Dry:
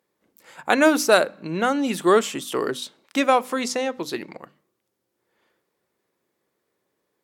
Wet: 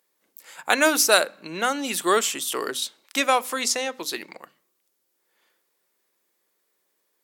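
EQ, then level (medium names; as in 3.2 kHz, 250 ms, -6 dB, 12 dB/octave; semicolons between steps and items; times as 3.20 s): high-pass 140 Hz; tilt EQ +3 dB/octave; -1.5 dB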